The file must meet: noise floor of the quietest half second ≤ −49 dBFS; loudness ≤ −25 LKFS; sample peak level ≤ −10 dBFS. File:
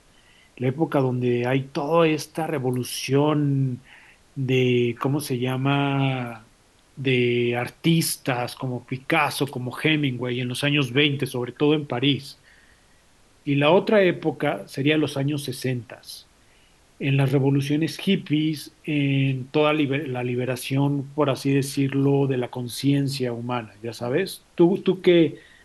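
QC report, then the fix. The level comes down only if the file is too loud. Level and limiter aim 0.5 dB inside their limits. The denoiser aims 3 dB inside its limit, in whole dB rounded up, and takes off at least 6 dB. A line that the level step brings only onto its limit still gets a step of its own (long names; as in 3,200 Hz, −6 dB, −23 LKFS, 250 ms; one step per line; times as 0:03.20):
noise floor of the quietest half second −57 dBFS: in spec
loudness −23.0 LKFS: out of spec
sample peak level −5.5 dBFS: out of spec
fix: level −2.5 dB
brickwall limiter −10.5 dBFS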